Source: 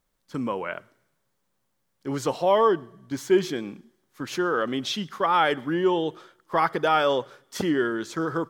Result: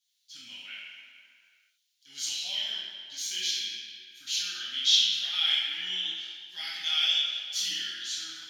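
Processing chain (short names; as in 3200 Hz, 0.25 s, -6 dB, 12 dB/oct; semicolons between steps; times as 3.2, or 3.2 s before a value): inverse Chebyshev high-pass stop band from 1200 Hz, stop band 50 dB; reverb RT60 2.2 s, pre-delay 3 ms, DRR -12.5 dB; gain -2 dB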